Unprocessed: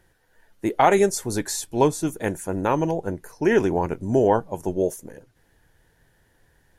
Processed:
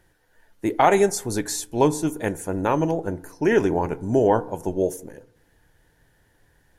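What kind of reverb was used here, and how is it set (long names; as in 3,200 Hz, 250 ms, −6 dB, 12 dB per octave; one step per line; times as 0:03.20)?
feedback delay network reverb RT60 0.77 s, low-frequency decay 1.1×, high-frequency decay 0.3×, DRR 15.5 dB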